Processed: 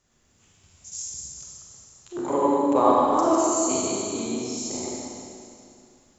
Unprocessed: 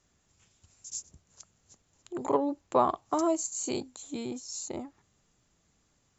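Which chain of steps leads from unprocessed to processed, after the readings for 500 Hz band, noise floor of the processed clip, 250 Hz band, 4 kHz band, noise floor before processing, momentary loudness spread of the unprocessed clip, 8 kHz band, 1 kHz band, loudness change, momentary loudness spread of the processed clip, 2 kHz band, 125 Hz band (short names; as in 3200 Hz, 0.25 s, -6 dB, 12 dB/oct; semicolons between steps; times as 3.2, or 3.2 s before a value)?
+8.0 dB, -63 dBFS, +8.5 dB, +8.5 dB, -72 dBFS, 14 LU, n/a, +8.5 dB, +8.0 dB, 20 LU, +8.0 dB, +7.5 dB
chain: reverse delay 0.109 s, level -1.5 dB; Schroeder reverb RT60 2.5 s, combs from 31 ms, DRR -4.5 dB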